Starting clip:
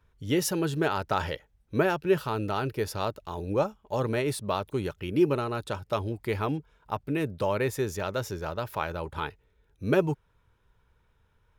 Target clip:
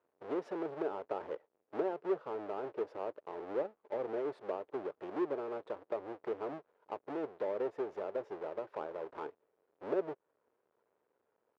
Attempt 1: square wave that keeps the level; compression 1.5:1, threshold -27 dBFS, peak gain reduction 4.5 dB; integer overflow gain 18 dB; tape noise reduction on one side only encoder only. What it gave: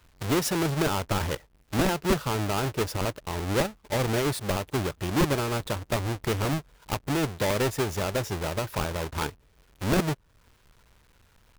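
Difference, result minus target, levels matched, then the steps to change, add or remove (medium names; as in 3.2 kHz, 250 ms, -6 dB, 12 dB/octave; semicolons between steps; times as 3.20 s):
500 Hz band -4.5 dB
add after compression: ladder band-pass 530 Hz, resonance 40%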